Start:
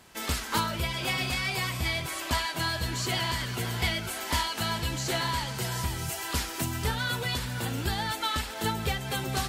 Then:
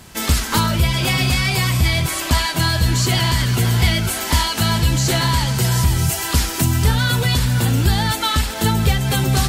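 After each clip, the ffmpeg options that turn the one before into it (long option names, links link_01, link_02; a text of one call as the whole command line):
ffmpeg -i in.wav -filter_complex "[0:a]bass=frequency=250:gain=9,treble=frequency=4000:gain=4,asplit=2[link_01][link_02];[link_02]alimiter=limit=-19dB:level=0:latency=1:release=27,volume=1dB[link_03];[link_01][link_03]amix=inputs=2:normalize=0,volume=3dB" out.wav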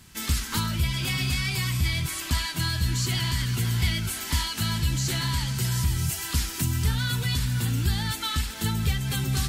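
ffmpeg -i in.wav -af "equalizer=frequency=610:width=0.99:gain=-11.5,volume=-8dB" out.wav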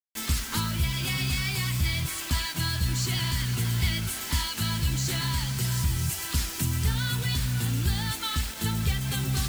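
ffmpeg -i in.wav -af "acrusher=bits=5:mix=0:aa=0.000001,volume=-1.5dB" out.wav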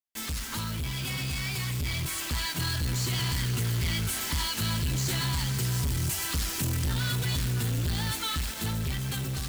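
ffmpeg -i in.wav -af "asoftclip=type=tanh:threshold=-29dB,dynaudnorm=framelen=840:gausssize=5:maxgain=4dB" out.wav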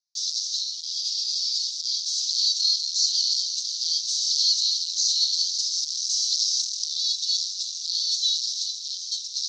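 ffmpeg -i in.wav -af "crystalizer=i=3:c=0,asuperpass=centerf=4900:order=8:qfactor=2.1,volume=7.5dB" out.wav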